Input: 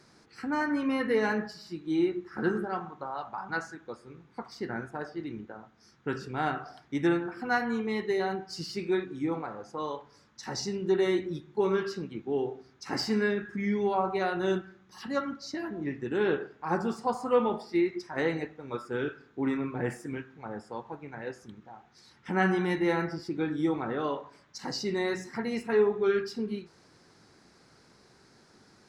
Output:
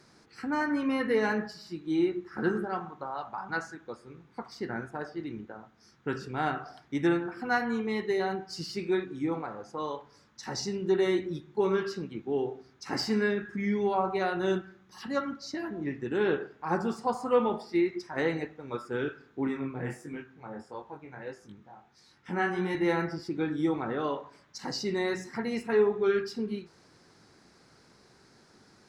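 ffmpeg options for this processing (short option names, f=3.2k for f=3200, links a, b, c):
-filter_complex "[0:a]asettb=1/sr,asplit=3[a][b][c];[a]atrim=end=19.474[d];[b]atrim=start=19.47:end=22.75,asetpts=PTS-STARTPTS,afade=t=in:d=0.004:c=qsin,afade=t=out:st=3.276:d=0.004:c=qsin,flanger=delay=19.5:depth=4.5:speed=1.5[e];[c]atrim=start=22.746[f];[d][e]acrossfade=d=0.004:c1=hsin:c2=qsin[g];[g][f]acrossfade=d=0.004:c1=qsin:c2=hsin"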